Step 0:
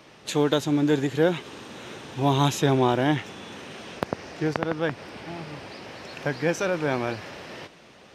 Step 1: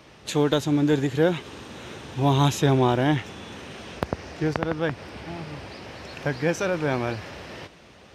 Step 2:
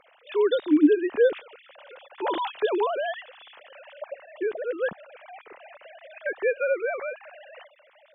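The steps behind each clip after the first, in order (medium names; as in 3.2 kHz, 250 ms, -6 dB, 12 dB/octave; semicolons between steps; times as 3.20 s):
peaking EQ 63 Hz +12.5 dB 1.3 oct
formants replaced by sine waves; trim -2 dB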